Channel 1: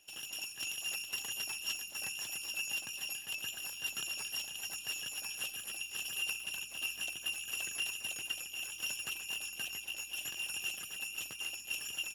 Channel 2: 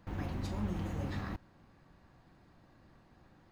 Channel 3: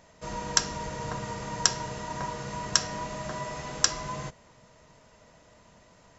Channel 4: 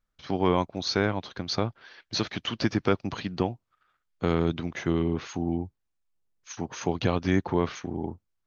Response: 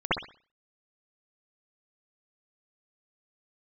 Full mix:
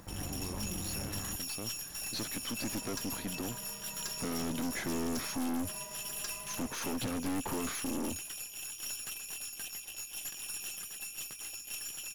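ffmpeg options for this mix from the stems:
-filter_complex "[0:a]acrusher=bits=10:mix=0:aa=0.000001,highshelf=f=4100:g=6.5,volume=1[s0];[1:a]acompressor=mode=upward:threshold=0.00631:ratio=2.5,volume=0.944,asplit=2[s1][s2];[2:a]aecho=1:1:4.9:0.65,adelay=2400,volume=0.2[s3];[3:a]equalizer=f=260:t=o:w=0.5:g=8.5,alimiter=limit=0.178:level=0:latency=1,volume=1.26[s4];[s2]apad=whole_len=373215[s5];[s4][s5]sidechaincompress=threshold=0.00112:ratio=3:attack=16:release=808[s6];[s0][s1][s3][s6]amix=inputs=4:normalize=0,bandreject=f=2800:w=7.7,aeval=exprs='(tanh(39.8*val(0)+0.45)-tanh(0.45))/39.8':c=same"

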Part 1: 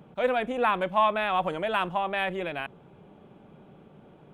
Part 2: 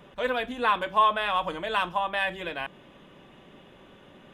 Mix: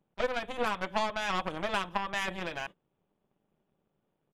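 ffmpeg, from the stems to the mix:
-filter_complex "[0:a]aeval=exprs='0.266*(cos(1*acos(clip(val(0)/0.266,-1,1)))-cos(1*PI/2))+0.0473*(cos(4*acos(clip(val(0)/0.266,-1,1)))-cos(4*PI/2))+0.00168*(cos(5*acos(clip(val(0)/0.266,-1,1)))-cos(5*PI/2))+0.0376*(cos(7*acos(clip(val(0)/0.266,-1,1)))-cos(7*PI/2))':c=same,volume=1,asplit=2[s0][s1];[1:a]adelay=2.9,volume=0.531[s2];[s1]apad=whole_len=191169[s3];[s2][s3]sidechaingate=range=0.0224:threshold=0.00316:ratio=16:detection=peak[s4];[s0][s4]amix=inputs=2:normalize=0,acompressor=threshold=0.0501:ratio=6"

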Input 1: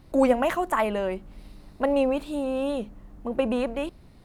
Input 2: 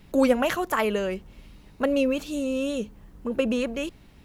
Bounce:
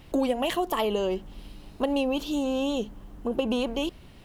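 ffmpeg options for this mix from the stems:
-filter_complex "[0:a]volume=1.19[s0];[1:a]highpass=f=390:w=0.5412,highpass=f=390:w=1.3066,equalizer=f=3000:w=4.7:g=7.5,volume=-1,volume=1[s1];[s0][s1]amix=inputs=2:normalize=0,acompressor=threshold=0.0794:ratio=6"

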